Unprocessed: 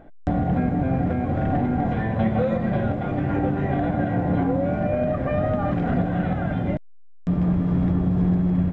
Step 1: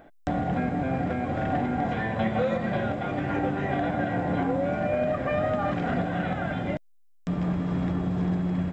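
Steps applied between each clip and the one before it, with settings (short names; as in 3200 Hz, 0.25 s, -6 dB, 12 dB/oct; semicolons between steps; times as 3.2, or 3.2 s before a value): tilt +2.5 dB/oct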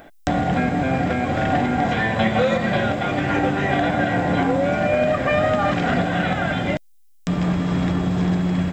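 high shelf 2200 Hz +11 dB; gain +6 dB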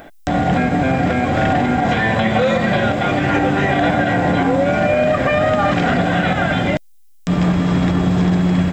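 maximiser +11.5 dB; gain -6 dB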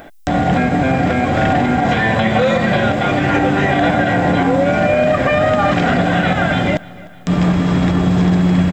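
feedback echo 0.301 s, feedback 53%, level -21.5 dB; gain +1.5 dB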